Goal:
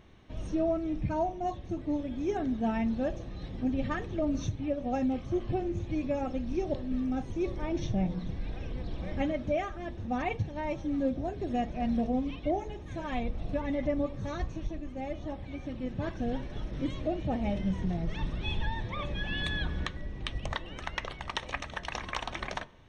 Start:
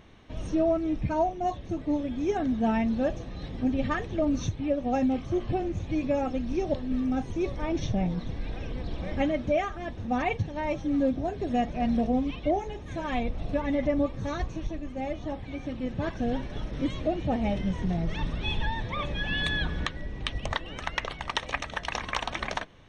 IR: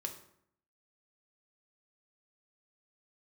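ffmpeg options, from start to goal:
-filter_complex "[0:a]asplit=2[a][b];[1:a]atrim=start_sample=2205,lowshelf=f=450:g=9.5[c];[b][c]afir=irnorm=-1:irlink=0,volume=-11.5dB[d];[a][d]amix=inputs=2:normalize=0,volume=-6.5dB"

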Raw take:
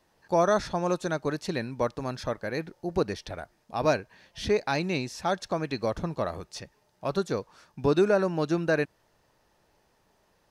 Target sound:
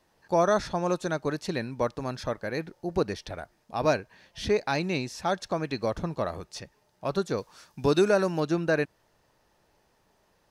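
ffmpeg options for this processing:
-filter_complex "[0:a]asettb=1/sr,asplit=3[a][b][c];[a]atrim=end=7.384[d];[b]atrim=start=7.38:end=8.4,asetpts=PTS-STARTPTS,afade=t=in:d=0.004:c=qsin,afade=t=out:st=1.016:d=0.004:c=qsin,highshelf=f=3.4k:g=9.5[e];[c]atrim=start=8.396[f];[d][e]acrossfade=d=0.004:c1=hsin:c2=qsin[g];[g][f]acrossfade=d=0.004:c1=qsin:c2=hsin"

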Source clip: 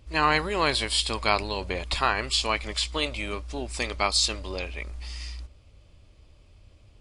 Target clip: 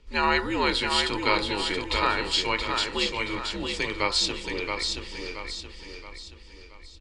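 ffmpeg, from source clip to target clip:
-filter_complex "[0:a]lowpass=6.2k,bandreject=f=840:w=5.2,aecho=1:1:2.1:0.37,bandreject=f=61.51:t=h:w=4,bandreject=f=123.02:t=h:w=4,bandreject=f=184.53:t=h:w=4,bandreject=f=246.04:t=h:w=4,bandreject=f=307.55:t=h:w=4,bandreject=f=369.06:t=h:w=4,bandreject=f=430.57:t=h:w=4,bandreject=f=492.08:t=h:w=4,bandreject=f=553.59:t=h:w=4,bandreject=f=615.1:t=h:w=4,bandreject=f=676.61:t=h:w=4,bandreject=f=738.12:t=h:w=4,bandreject=f=799.63:t=h:w=4,bandreject=f=861.14:t=h:w=4,bandreject=f=922.65:t=h:w=4,bandreject=f=984.16:t=h:w=4,bandreject=f=1.04567k:t=h:w=4,bandreject=f=1.10718k:t=h:w=4,bandreject=f=1.16869k:t=h:w=4,bandreject=f=1.2302k:t=h:w=4,bandreject=f=1.29171k:t=h:w=4,bandreject=f=1.35322k:t=h:w=4,bandreject=f=1.41473k:t=h:w=4,bandreject=f=1.47624k:t=h:w=4,bandreject=f=1.53775k:t=h:w=4,bandreject=f=1.59926k:t=h:w=4,bandreject=f=1.66077k:t=h:w=4,bandreject=f=1.72228k:t=h:w=4,bandreject=f=1.78379k:t=h:w=4,bandreject=f=1.8453k:t=h:w=4,bandreject=f=1.90681k:t=h:w=4,bandreject=f=1.96832k:t=h:w=4,bandreject=f=2.02983k:t=h:w=4,afreqshift=-86,asplit=2[a][b];[b]aecho=0:1:675|1350|2025|2700|3375:0.562|0.242|0.104|0.0447|0.0192[c];[a][c]amix=inputs=2:normalize=0"

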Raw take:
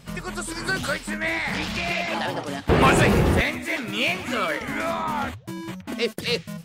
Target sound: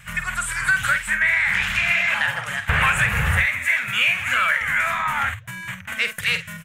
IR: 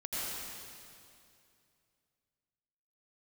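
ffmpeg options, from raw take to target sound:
-filter_complex "[0:a]firequalizer=gain_entry='entry(120,0);entry(320,-30);entry(480,-13);entry(1600,11);entry(2400,8);entry(4700,-10);entry(6900,3)':delay=0.05:min_phase=1,acompressor=threshold=-18dB:ratio=6,asplit=2[a][b];[b]adelay=49,volume=-10dB[c];[a][c]amix=inputs=2:normalize=0,volume=2.5dB"

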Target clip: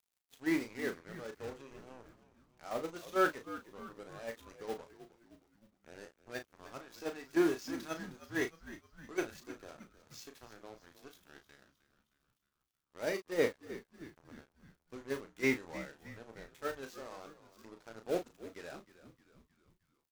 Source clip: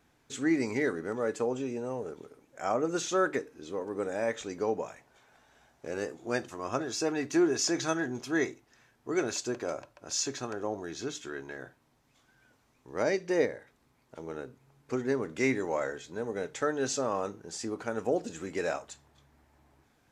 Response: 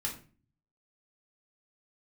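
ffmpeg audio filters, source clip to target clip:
-filter_complex "[0:a]aeval=exprs='val(0)+0.5*0.0266*sgn(val(0))':c=same,acrossover=split=4600[a][b];[b]acompressor=threshold=-51dB:ratio=4:attack=1:release=60[c];[a][c]amix=inputs=2:normalize=0,agate=range=-16dB:threshold=-24dB:ratio=16:detection=peak,highshelf=f=2.6k:g=8,acrusher=bits=6:mix=0:aa=0.5,asplit=2[d][e];[e]adelay=35,volume=-8dB[f];[d][f]amix=inputs=2:normalize=0,asplit=2[g][h];[h]asplit=5[i][j][k][l][m];[i]adelay=311,afreqshift=-75,volume=-15dB[n];[j]adelay=622,afreqshift=-150,volume=-20.4dB[o];[k]adelay=933,afreqshift=-225,volume=-25.7dB[p];[l]adelay=1244,afreqshift=-300,volume=-31.1dB[q];[m]adelay=1555,afreqshift=-375,volume=-36.4dB[r];[n][o][p][q][r]amix=inputs=5:normalize=0[s];[g][s]amix=inputs=2:normalize=0,volume=-4.5dB"

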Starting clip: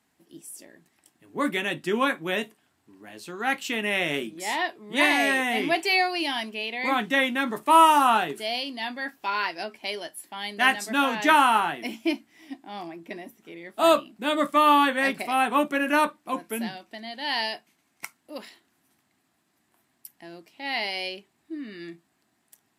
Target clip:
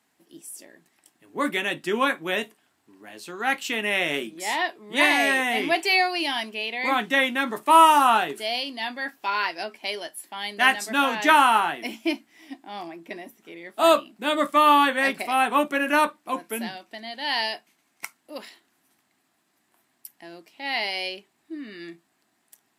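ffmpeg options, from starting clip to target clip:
-af "lowshelf=f=160:g=-11,volume=2dB"

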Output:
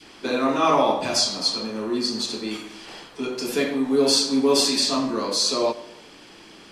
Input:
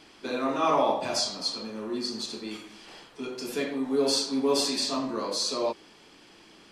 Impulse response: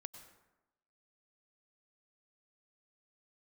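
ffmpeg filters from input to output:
-filter_complex "[0:a]adynamicequalizer=threshold=0.0126:dfrequency=740:dqfactor=0.73:tfrequency=740:tqfactor=0.73:attack=5:release=100:ratio=0.375:range=2.5:mode=cutabove:tftype=bell,asplit=2[a][b];[1:a]atrim=start_sample=2205[c];[b][c]afir=irnorm=-1:irlink=0,volume=-1dB[d];[a][d]amix=inputs=2:normalize=0,volume=4dB"

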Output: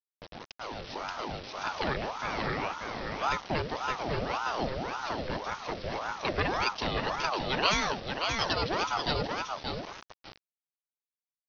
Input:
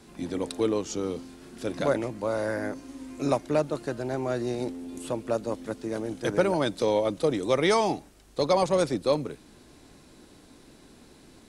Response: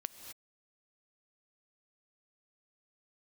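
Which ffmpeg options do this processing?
-filter_complex "[0:a]equalizer=f=500:w=0.84:g=-14.5,aecho=1:1:581|1162|1743:0.531|0.0956|0.0172,acrossover=split=350|990[a][b][c];[b]alimiter=level_in=14dB:limit=-24dB:level=0:latency=1:release=242,volume=-14dB[d];[a][d][c]amix=inputs=3:normalize=0,dynaudnorm=f=390:g=5:m=12.5dB,agate=range=-33dB:threshold=-35dB:ratio=3:detection=peak,aresample=11025,acrusher=bits=5:mix=0:aa=0.000001,aresample=44100,aeval=exprs='val(0)*sin(2*PI*710*n/s+710*0.65/1.8*sin(2*PI*1.8*n/s))':c=same,volume=-5dB"

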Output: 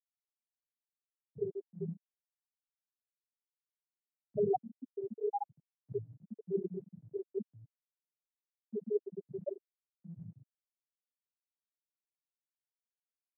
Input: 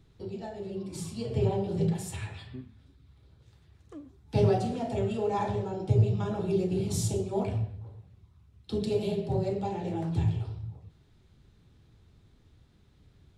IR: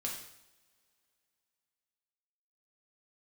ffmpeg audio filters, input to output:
-af "afftfilt=real='re*gte(hypot(re,im),0.355)':imag='im*gte(hypot(re,im),0.355)':win_size=1024:overlap=0.75,highpass=f=230:w=0.5412,highpass=f=230:w=1.3066,equalizer=f=380:t=q:w=4:g=-5,equalizer=f=650:t=q:w=4:g=4,equalizer=f=1.2k:t=q:w=4:g=-4,equalizer=f=3.2k:t=q:w=4:g=-7,equalizer=f=6.5k:t=q:w=4:g=7,lowpass=f=7.9k:w=0.5412,lowpass=f=7.9k:w=1.3066"

